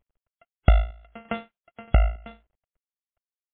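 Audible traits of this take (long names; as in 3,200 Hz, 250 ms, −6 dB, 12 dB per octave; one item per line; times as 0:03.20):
a buzz of ramps at a fixed pitch in blocks of 64 samples
chopped level 1.6 Hz, depth 60%, duty 45%
a quantiser's noise floor 12 bits, dither none
MP3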